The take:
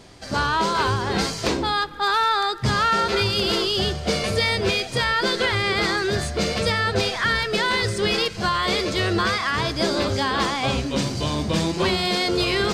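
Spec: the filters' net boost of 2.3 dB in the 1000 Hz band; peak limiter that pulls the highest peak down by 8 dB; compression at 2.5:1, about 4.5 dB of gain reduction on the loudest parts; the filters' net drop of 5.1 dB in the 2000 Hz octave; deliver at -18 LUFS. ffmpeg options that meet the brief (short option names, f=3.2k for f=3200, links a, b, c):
-af "equalizer=f=1k:t=o:g=5.5,equalizer=f=2k:t=o:g=-8.5,acompressor=threshold=-23dB:ratio=2.5,volume=11dB,alimiter=limit=-9.5dB:level=0:latency=1"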